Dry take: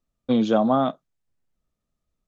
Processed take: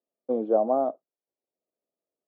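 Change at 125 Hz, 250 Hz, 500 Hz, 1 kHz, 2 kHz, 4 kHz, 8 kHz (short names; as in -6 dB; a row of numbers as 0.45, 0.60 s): under -15 dB, -11.0 dB, -0.5 dB, -4.0 dB, under -20 dB, under -35 dB, n/a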